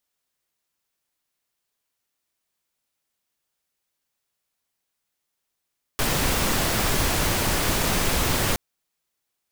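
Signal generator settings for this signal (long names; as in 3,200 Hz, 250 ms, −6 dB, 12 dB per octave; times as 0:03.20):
noise pink, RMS −22.5 dBFS 2.57 s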